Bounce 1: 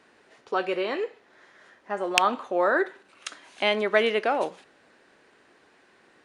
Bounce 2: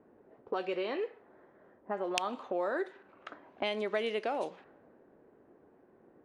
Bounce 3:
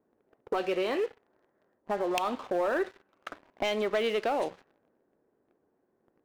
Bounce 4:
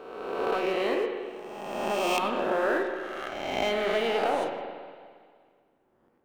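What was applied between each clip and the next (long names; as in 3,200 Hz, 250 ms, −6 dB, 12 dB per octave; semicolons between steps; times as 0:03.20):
low-pass that shuts in the quiet parts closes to 530 Hz, open at −20 dBFS; dynamic equaliser 1,500 Hz, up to −6 dB, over −37 dBFS, Q 1.2; downward compressor 2.5 to 1, threshold −38 dBFS, peak gain reduction 14.5 dB; level +2.5 dB
leveller curve on the samples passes 3; level −5.5 dB
peak hold with a rise ahead of every peak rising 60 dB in 1.54 s; on a send at −4.5 dB: convolution reverb RT60 1.9 s, pre-delay 43 ms; on the sum: level −2 dB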